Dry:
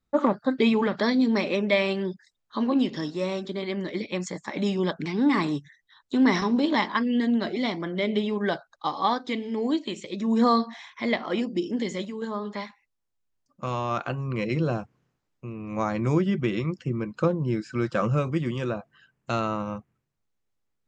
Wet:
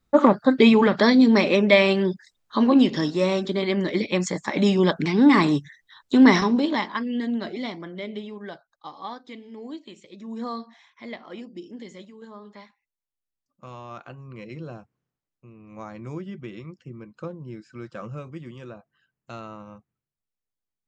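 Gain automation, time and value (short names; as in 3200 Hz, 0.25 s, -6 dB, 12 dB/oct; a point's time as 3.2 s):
6.28 s +6.5 dB
6.88 s -3 dB
7.52 s -3 dB
8.49 s -11.5 dB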